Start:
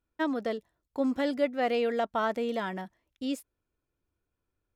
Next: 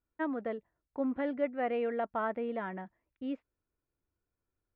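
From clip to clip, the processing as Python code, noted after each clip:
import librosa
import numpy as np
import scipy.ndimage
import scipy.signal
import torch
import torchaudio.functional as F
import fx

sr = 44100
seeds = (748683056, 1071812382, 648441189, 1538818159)

y = scipy.signal.sosfilt(scipy.signal.butter(4, 2300.0, 'lowpass', fs=sr, output='sos'), x)
y = y * 10.0 ** (-4.5 / 20.0)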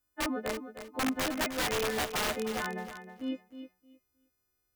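y = fx.freq_snap(x, sr, grid_st=3)
y = (np.mod(10.0 ** (27.0 / 20.0) * y + 1.0, 2.0) - 1.0) / 10.0 ** (27.0 / 20.0)
y = fx.echo_feedback(y, sr, ms=311, feedback_pct=19, wet_db=-10.5)
y = y * 10.0 ** (2.0 / 20.0)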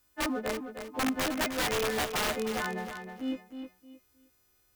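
y = fx.law_mismatch(x, sr, coded='mu')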